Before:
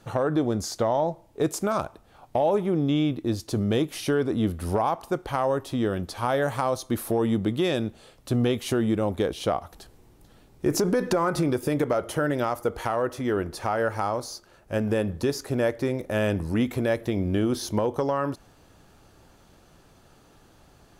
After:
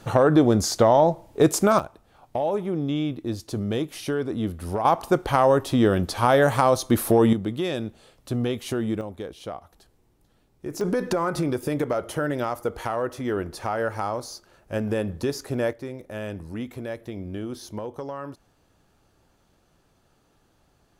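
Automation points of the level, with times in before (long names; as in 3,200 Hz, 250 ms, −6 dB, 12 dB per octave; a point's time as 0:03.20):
+7 dB
from 0:01.79 −2.5 dB
from 0:04.85 +6.5 dB
from 0:07.33 −2.5 dB
from 0:09.01 −9.5 dB
from 0:10.81 −1 dB
from 0:15.73 −8.5 dB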